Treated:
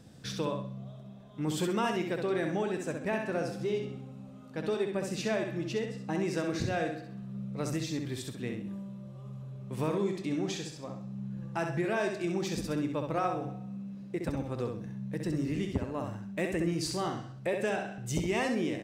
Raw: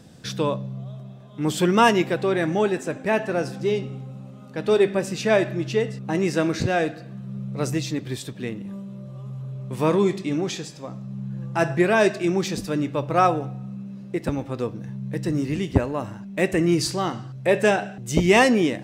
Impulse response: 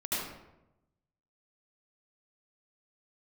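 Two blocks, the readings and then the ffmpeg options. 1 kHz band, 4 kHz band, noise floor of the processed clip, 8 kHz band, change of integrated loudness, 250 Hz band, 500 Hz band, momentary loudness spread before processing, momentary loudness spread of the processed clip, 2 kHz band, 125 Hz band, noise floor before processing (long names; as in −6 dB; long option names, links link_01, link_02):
−12.0 dB, −10.0 dB, −47 dBFS, −8.5 dB, −10.5 dB, −9.0 dB, −10.5 dB, 17 LU, 11 LU, −11.5 dB, −8.5 dB, −41 dBFS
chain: -filter_complex "[0:a]lowshelf=frequency=130:gain=4,acompressor=threshold=-21dB:ratio=5,asplit=2[link_01][link_02];[link_02]aecho=0:1:65|130|195|260:0.531|0.175|0.0578|0.0191[link_03];[link_01][link_03]amix=inputs=2:normalize=0,volume=-7.5dB"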